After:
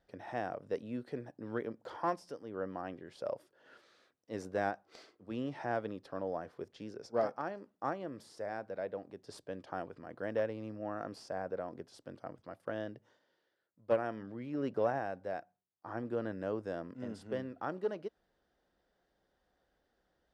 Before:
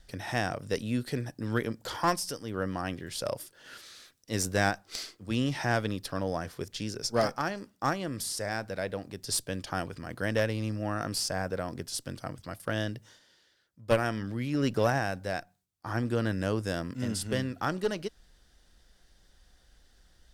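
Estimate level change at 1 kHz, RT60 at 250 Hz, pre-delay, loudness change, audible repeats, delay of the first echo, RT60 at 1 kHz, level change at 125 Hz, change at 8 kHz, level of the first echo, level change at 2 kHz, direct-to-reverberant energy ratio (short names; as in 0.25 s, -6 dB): -6.5 dB, none, none, -7.5 dB, none, none, none, -15.5 dB, under -25 dB, none, -12.0 dB, none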